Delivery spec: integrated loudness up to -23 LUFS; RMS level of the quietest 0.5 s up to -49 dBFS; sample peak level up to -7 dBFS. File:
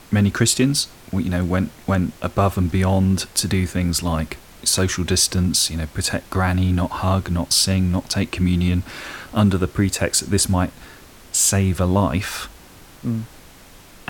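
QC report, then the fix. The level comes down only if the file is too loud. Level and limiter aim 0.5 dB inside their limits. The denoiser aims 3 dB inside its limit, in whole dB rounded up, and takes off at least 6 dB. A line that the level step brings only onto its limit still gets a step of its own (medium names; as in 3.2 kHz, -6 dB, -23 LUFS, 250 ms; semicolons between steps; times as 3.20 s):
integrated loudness -20.0 LUFS: fail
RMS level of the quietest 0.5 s -45 dBFS: fail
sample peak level -2.5 dBFS: fail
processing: noise reduction 6 dB, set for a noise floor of -45 dBFS; trim -3.5 dB; peak limiter -7.5 dBFS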